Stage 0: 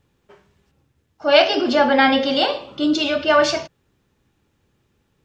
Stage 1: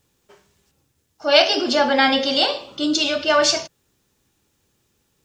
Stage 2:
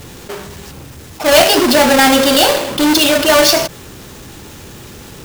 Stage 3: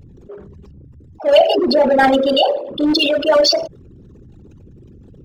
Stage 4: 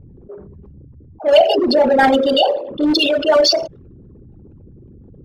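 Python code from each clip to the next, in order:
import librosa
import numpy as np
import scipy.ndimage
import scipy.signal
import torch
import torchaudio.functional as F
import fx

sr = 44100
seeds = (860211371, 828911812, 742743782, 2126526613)

y1 = fx.bass_treble(x, sr, bass_db=-3, treble_db=13)
y1 = y1 * librosa.db_to_amplitude(-2.0)
y2 = fx.halfwave_hold(y1, sr)
y2 = fx.env_flatten(y2, sr, amount_pct=50)
y3 = fx.envelope_sharpen(y2, sr, power=3.0)
y3 = fx.upward_expand(y3, sr, threshold_db=-19.0, expansion=1.5)
y3 = y3 * librosa.db_to_amplitude(-1.0)
y4 = fx.env_lowpass(y3, sr, base_hz=790.0, full_db=-12.5)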